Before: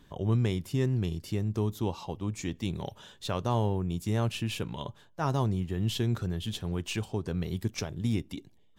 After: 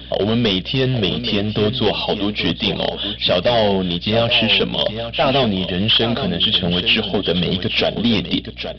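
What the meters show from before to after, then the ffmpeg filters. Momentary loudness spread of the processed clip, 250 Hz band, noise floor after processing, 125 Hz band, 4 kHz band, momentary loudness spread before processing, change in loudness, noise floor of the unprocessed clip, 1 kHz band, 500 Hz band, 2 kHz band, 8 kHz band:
5 LU, +12.5 dB, −33 dBFS, +6.0 dB, +25.0 dB, 7 LU, +14.5 dB, −59 dBFS, +13.0 dB, +17.0 dB, +21.0 dB, can't be measured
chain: -filter_complex "[0:a]aphaser=in_gain=1:out_gain=1:delay=5:decay=0.36:speed=1.2:type=triangular,apsyclip=23.5dB,asplit=2[link_01][link_02];[link_02]acrusher=bits=4:mode=log:mix=0:aa=0.000001,volume=-10dB[link_03];[link_01][link_03]amix=inputs=2:normalize=0,highpass=260,equalizer=frequency=340:width_type=q:width=4:gain=-10,equalizer=frequency=630:width_type=q:width=4:gain=8,equalizer=frequency=980:width_type=q:width=4:gain=-9,equalizer=frequency=2200:width_type=q:width=4:gain=-7,equalizer=frequency=3300:width_type=q:width=4:gain=8,lowpass=frequency=3700:width=0.5412,lowpass=frequency=3700:width=1.3066,dynaudnorm=framelen=360:gausssize=5:maxgain=3dB,aexciter=amount=1.5:drive=8.7:freq=2100,equalizer=frequency=1200:width=0.9:gain=-4,aresample=11025,volume=10.5dB,asoftclip=hard,volume=-10.5dB,aresample=44100,aecho=1:1:825:0.335,aeval=exprs='val(0)+0.0141*(sin(2*PI*60*n/s)+sin(2*PI*2*60*n/s)/2+sin(2*PI*3*60*n/s)/3+sin(2*PI*4*60*n/s)/4+sin(2*PI*5*60*n/s)/5)':channel_layout=same"

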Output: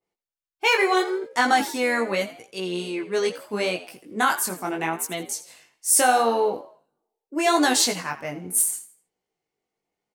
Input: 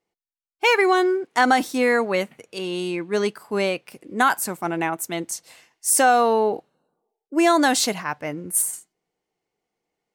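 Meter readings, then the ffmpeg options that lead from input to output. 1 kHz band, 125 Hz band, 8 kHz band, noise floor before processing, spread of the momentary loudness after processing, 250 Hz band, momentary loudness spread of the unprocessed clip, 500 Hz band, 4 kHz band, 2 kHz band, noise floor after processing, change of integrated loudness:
−2.5 dB, −3.0 dB, +1.0 dB, below −85 dBFS, 14 LU, −4.0 dB, 14 LU, −3.0 dB, +1.0 dB, −1.5 dB, below −85 dBFS, −1.5 dB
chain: -filter_complex "[0:a]flanger=delay=16:depth=6:speed=0.77,asplit=4[link_01][link_02][link_03][link_04];[link_02]adelay=82,afreqshift=71,volume=-15.5dB[link_05];[link_03]adelay=164,afreqshift=142,volume=-23.7dB[link_06];[link_04]adelay=246,afreqshift=213,volume=-31.9dB[link_07];[link_01][link_05][link_06][link_07]amix=inputs=4:normalize=0,adynamicequalizer=threshold=0.0158:dfrequency=2400:dqfactor=0.7:tfrequency=2400:tqfactor=0.7:attack=5:release=100:ratio=0.375:range=2.5:mode=boostabove:tftype=highshelf"

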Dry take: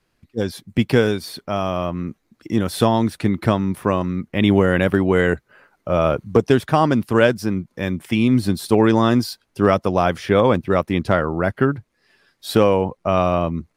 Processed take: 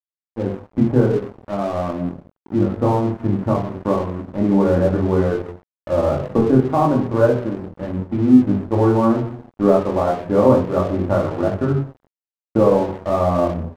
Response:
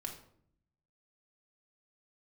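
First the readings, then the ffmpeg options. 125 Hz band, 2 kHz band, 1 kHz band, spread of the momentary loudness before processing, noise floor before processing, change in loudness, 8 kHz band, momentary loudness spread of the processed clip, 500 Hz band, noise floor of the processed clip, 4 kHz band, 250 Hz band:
+1.0 dB, −10.0 dB, −1.0 dB, 10 LU, −69 dBFS, +0.5 dB, can't be measured, 11 LU, +0.5 dB, below −85 dBFS, below −10 dB, +1.5 dB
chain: -filter_complex "[1:a]atrim=start_sample=2205[link_01];[0:a][link_01]afir=irnorm=-1:irlink=0,asplit=2[link_02][link_03];[link_03]aeval=exprs='sgn(val(0))*max(abs(val(0))-0.0188,0)':channel_layout=same,volume=-6dB[link_04];[link_02][link_04]amix=inputs=2:normalize=0,lowpass=frequency=1100:width=0.5412,lowpass=frequency=1100:width=1.3066,flanger=delay=20:depth=4.5:speed=0.35,adynamicequalizer=threshold=0.0355:dfrequency=210:dqfactor=1.4:tfrequency=210:tqfactor=1.4:attack=5:release=100:ratio=0.375:range=2.5:mode=cutabove:tftype=bell,aeval=exprs='sgn(val(0))*max(abs(val(0))-0.0141,0)':channel_layout=same,volume=3dB"

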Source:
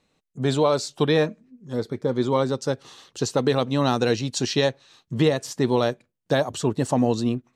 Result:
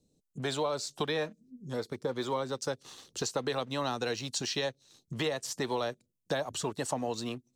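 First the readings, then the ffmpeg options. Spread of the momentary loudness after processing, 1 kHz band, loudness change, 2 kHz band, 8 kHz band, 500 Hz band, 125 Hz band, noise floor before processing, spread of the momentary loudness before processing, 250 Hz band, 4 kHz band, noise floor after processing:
7 LU, −8.5 dB, −10.5 dB, −7.0 dB, −4.0 dB, −11.0 dB, −14.5 dB, −75 dBFS, 8 LU, −14.0 dB, −6.0 dB, −79 dBFS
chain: -filter_complex "[0:a]acrossover=split=520|4700[link_01][link_02][link_03];[link_01]acompressor=threshold=-38dB:ratio=6[link_04];[link_02]aeval=exprs='sgn(val(0))*max(abs(val(0))-0.00237,0)':channel_layout=same[link_05];[link_04][link_05][link_03]amix=inputs=3:normalize=0,acrossover=split=330[link_06][link_07];[link_07]acompressor=threshold=-32dB:ratio=4[link_08];[link_06][link_08]amix=inputs=2:normalize=0"

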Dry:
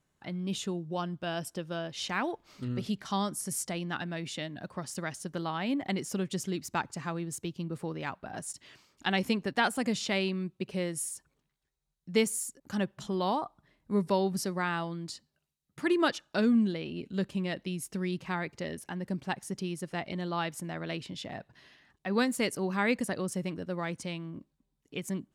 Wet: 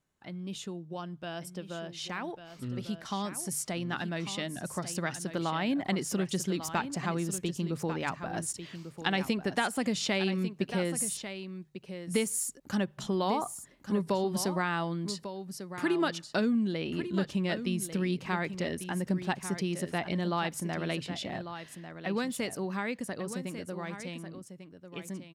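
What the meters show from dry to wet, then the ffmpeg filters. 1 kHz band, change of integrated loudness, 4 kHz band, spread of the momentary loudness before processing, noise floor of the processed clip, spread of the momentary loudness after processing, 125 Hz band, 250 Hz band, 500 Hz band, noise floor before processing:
0.0 dB, 0.0 dB, +0.5 dB, 11 LU, −53 dBFS, 11 LU, +1.5 dB, 0.0 dB, 0.0 dB, −81 dBFS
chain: -af "acompressor=threshold=-30dB:ratio=4,bandreject=frequency=50:width_type=h:width=6,bandreject=frequency=100:width_type=h:width=6,bandreject=frequency=150:width_type=h:width=6,dynaudnorm=framelen=340:gausssize=21:maxgain=8dB,aecho=1:1:1146:0.299,volume=-4dB"

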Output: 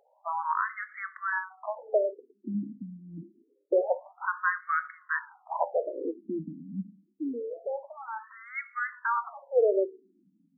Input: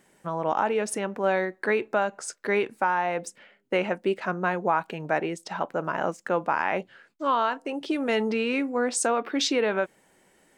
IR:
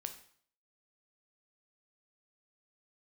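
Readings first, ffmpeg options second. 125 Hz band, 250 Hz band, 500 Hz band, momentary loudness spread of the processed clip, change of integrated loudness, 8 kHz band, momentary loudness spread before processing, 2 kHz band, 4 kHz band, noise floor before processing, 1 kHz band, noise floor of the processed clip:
−7.0 dB, −8.0 dB, −3.5 dB, 13 LU, −4.5 dB, below −40 dB, 6 LU, −3.5 dB, below −40 dB, −64 dBFS, −6.0 dB, −70 dBFS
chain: -filter_complex "[0:a]asplit=2[link_01][link_02];[1:a]atrim=start_sample=2205,lowshelf=frequency=140:gain=11.5[link_03];[link_02][link_03]afir=irnorm=-1:irlink=0,volume=2.5dB[link_04];[link_01][link_04]amix=inputs=2:normalize=0,afftfilt=real='re*between(b*sr/1024,210*pow(1600/210,0.5+0.5*sin(2*PI*0.26*pts/sr))/1.41,210*pow(1600/210,0.5+0.5*sin(2*PI*0.26*pts/sr))*1.41)':imag='im*between(b*sr/1024,210*pow(1600/210,0.5+0.5*sin(2*PI*0.26*pts/sr))/1.41,210*pow(1600/210,0.5+0.5*sin(2*PI*0.26*pts/sr))*1.41)':win_size=1024:overlap=0.75,volume=-3.5dB"

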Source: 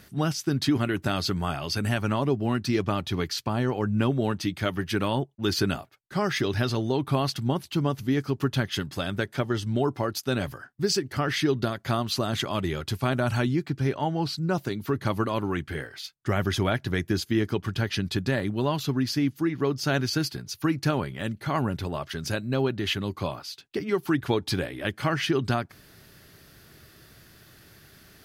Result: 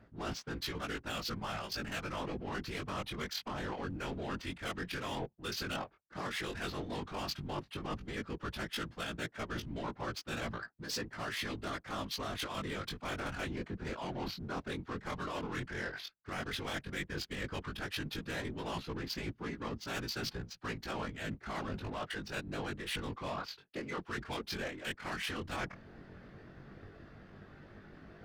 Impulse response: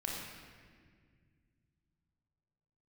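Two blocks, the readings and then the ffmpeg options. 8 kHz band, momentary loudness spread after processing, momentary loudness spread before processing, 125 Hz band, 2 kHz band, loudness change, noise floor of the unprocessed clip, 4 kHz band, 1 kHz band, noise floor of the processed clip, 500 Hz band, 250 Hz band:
−10.5 dB, 5 LU, 5 LU, −16.5 dB, −7.5 dB, −12.5 dB, −55 dBFS, −9.0 dB, −9.5 dB, −62 dBFS, −13.5 dB, −15.0 dB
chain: -filter_complex "[0:a]acrossover=split=200[link_01][link_02];[link_02]adynamicsmooth=sensitivity=4.5:basefreq=760[link_03];[link_01][link_03]amix=inputs=2:normalize=0,afftfilt=real='hypot(re,im)*cos(2*PI*random(0))':imag='hypot(re,im)*sin(2*PI*random(1))':win_size=512:overlap=0.75,flanger=delay=17.5:depth=5.1:speed=0.1,tiltshelf=frequency=830:gain=-5.5,afftfilt=real='re*lt(hypot(re,im),0.1)':imag='im*lt(hypot(re,im),0.1)':win_size=1024:overlap=0.75,areverse,acompressor=threshold=-53dB:ratio=8,areverse,volume=16dB"

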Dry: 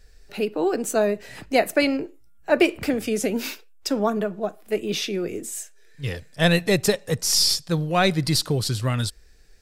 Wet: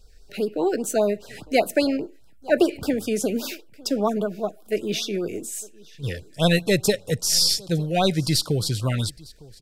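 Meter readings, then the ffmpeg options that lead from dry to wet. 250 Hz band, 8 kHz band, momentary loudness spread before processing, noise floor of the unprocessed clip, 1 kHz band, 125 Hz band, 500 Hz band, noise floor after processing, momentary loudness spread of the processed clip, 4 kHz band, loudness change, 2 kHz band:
0.0 dB, 0.0 dB, 12 LU, −49 dBFS, −1.5 dB, 0.0 dB, 0.0 dB, −49 dBFS, 13 LU, 0.0 dB, −0.5 dB, −4.0 dB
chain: -af "aecho=1:1:906:0.0668,afftfilt=real='re*(1-between(b*sr/1024,910*pow(2300/910,0.5+0.5*sin(2*PI*5*pts/sr))/1.41,910*pow(2300/910,0.5+0.5*sin(2*PI*5*pts/sr))*1.41))':imag='im*(1-between(b*sr/1024,910*pow(2300/910,0.5+0.5*sin(2*PI*5*pts/sr))/1.41,910*pow(2300/910,0.5+0.5*sin(2*PI*5*pts/sr))*1.41))':win_size=1024:overlap=0.75"

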